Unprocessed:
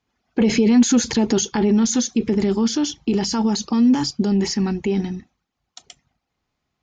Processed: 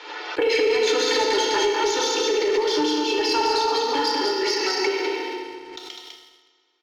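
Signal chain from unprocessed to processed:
Butterworth high-pass 300 Hz 72 dB per octave
high-shelf EQ 2,600 Hz −7.5 dB
comb filter 2.2 ms, depth 66%
on a send: single-tap delay 202 ms −4 dB
on the sum: feedback delay network reverb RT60 1.9 s, low-frequency decay 1.25×, high-frequency decay 0.85×, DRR −1.5 dB
downward compressor 2 to 1, threshold −21 dBFS, peak gain reduction 7 dB
low-pass filter 4,300 Hz 24 dB per octave
spectral tilt +3.5 dB per octave
leveller curve on the samples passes 1
notch filter 790 Hz, Q 18
background raised ahead of every attack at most 41 dB per second

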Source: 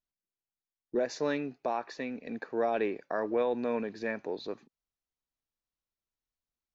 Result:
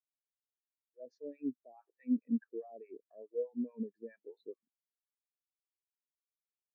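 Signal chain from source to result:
reversed playback
downward compressor 8 to 1, threshold −37 dBFS, peak gain reduction 13 dB
reversed playback
brickwall limiter −34 dBFS, peak gain reduction 7.5 dB
two-band tremolo in antiphase 4.7 Hz, depth 100%, crossover 720 Hz
every bin expanded away from the loudest bin 2.5 to 1
level +12.5 dB

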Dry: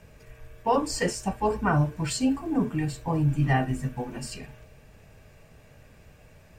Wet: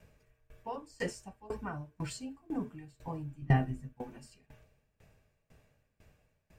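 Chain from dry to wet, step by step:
0:03.42–0:03.93: low-shelf EQ 360 Hz +9.5 dB
tremolo with a ramp in dB decaying 2 Hz, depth 23 dB
level −7 dB

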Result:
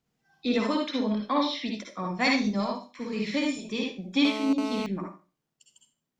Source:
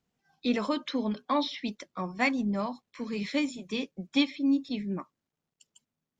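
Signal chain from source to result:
0:02.24–0:02.65: flat-topped bell 4,700 Hz +9 dB 1.1 octaves
convolution reverb RT60 0.35 s, pre-delay 49 ms, DRR 0 dB
0:04.25–0:04.86: phone interference −34 dBFS

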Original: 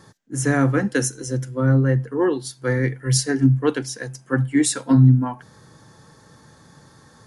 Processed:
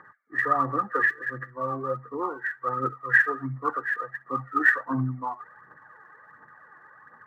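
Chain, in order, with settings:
hearing-aid frequency compression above 1,100 Hz 4 to 1
resonant band-pass 1,200 Hz, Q 1.4
phase shifter 1.4 Hz, delay 3 ms, feedback 54%

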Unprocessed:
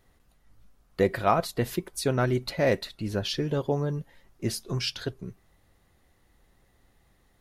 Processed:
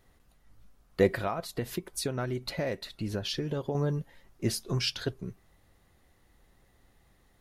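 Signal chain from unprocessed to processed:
0:01.14–0:03.75: downward compressor 6 to 1, threshold −29 dBFS, peak gain reduction 12 dB

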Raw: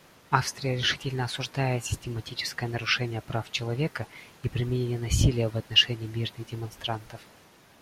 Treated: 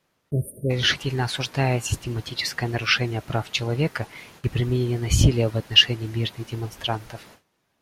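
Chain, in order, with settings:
time-frequency box erased 0:00.31–0:00.70, 650–8,500 Hz
noise gate with hold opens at −41 dBFS
level +5 dB

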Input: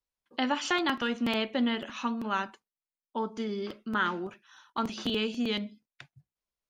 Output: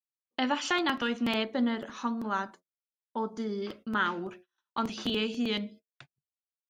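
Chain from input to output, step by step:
hum removal 90.41 Hz, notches 8
noise gate −50 dBFS, range −33 dB
0:01.43–0:03.62: parametric band 2,700 Hz −12.5 dB 0.55 octaves

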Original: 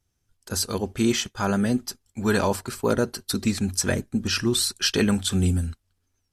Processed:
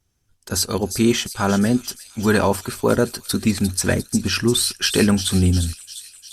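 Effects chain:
delay with a high-pass on its return 351 ms, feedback 61%, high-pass 4,400 Hz, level −6 dB
level +5 dB
Opus 48 kbit/s 48,000 Hz

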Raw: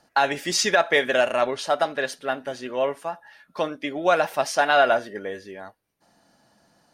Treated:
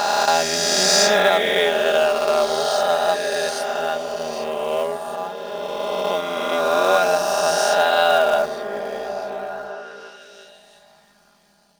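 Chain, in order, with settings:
peak hold with a rise ahead of every peak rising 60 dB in 1.97 s
octave-band graphic EQ 250/2,000/4,000 Hz −5/−7/+3 dB
in parallel at −7.5 dB: log-companded quantiser 4 bits
on the sum: time stretch by overlap-add 1.7×, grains 24 ms
on a send: echo through a band-pass that steps 343 ms, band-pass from 190 Hz, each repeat 0.7 octaves, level −5 dB
on the sum: level −2 dB

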